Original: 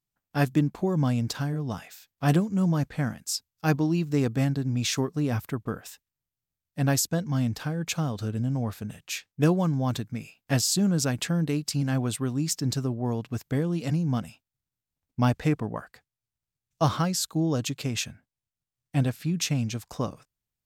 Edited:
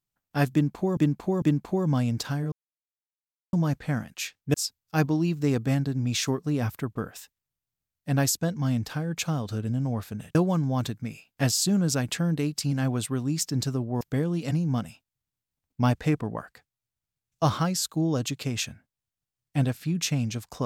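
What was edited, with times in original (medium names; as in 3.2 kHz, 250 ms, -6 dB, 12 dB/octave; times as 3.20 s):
0.52–0.97 s: loop, 3 plays
1.62–2.63 s: mute
9.05–9.45 s: move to 3.24 s
13.11–13.40 s: delete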